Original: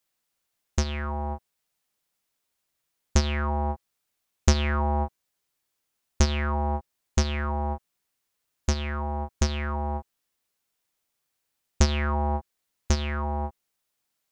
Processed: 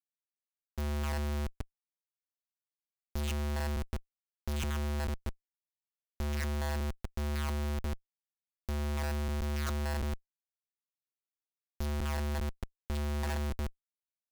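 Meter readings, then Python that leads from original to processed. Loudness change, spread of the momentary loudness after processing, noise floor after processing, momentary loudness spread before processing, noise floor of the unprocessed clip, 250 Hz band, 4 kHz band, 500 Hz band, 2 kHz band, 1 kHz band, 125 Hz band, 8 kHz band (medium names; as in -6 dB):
-8.0 dB, 10 LU, under -85 dBFS, 9 LU, -80 dBFS, -7.0 dB, -9.5 dB, -7.5 dB, -7.5 dB, -12.0 dB, -6.5 dB, -11.0 dB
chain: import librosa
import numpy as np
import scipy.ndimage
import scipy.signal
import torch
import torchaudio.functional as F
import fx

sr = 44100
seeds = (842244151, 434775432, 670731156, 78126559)

y = fx.reverse_delay(x, sr, ms=147, wet_db=-12.5)
y = fx.rider(y, sr, range_db=4, speed_s=0.5)
y = fx.schmitt(y, sr, flips_db=-34.5)
y = y * librosa.db_to_amplitude(-3.5)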